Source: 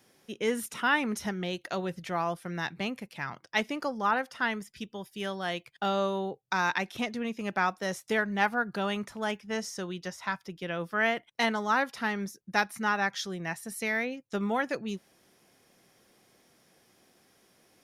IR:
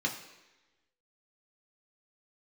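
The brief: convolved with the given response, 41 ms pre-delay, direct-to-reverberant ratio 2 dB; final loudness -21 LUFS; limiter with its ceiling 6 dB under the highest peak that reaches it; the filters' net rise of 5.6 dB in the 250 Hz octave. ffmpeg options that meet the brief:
-filter_complex "[0:a]equalizer=f=250:t=o:g=7,alimiter=limit=-17.5dB:level=0:latency=1,asplit=2[a][b];[1:a]atrim=start_sample=2205,adelay=41[c];[b][c]afir=irnorm=-1:irlink=0,volume=-8dB[d];[a][d]amix=inputs=2:normalize=0,volume=7dB"

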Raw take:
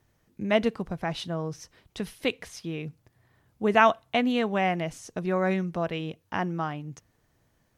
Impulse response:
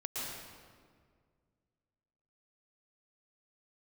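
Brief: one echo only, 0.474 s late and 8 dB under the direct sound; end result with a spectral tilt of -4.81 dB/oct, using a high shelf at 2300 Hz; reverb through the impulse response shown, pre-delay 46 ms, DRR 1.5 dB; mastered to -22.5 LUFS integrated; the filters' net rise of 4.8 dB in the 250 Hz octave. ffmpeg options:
-filter_complex "[0:a]equalizer=f=250:t=o:g=6,highshelf=f=2.3k:g=3,aecho=1:1:474:0.398,asplit=2[a][b];[1:a]atrim=start_sample=2205,adelay=46[c];[b][c]afir=irnorm=-1:irlink=0,volume=-4dB[d];[a][d]amix=inputs=2:normalize=0"

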